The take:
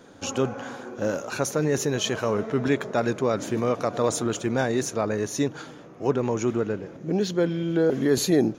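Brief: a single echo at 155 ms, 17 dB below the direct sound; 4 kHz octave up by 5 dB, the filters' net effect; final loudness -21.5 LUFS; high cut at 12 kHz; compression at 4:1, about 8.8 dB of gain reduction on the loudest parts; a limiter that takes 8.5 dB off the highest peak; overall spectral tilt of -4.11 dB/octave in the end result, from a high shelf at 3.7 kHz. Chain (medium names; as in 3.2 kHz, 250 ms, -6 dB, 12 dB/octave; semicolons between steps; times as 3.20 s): low-pass 12 kHz; treble shelf 3.7 kHz +4.5 dB; peaking EQ 4 kHz +3.5 dB; compression 4:1, threshold -27 dBFS; peak limiter -22.5 dBFS; delay 155 ms -17 dB; trim +11.5 dB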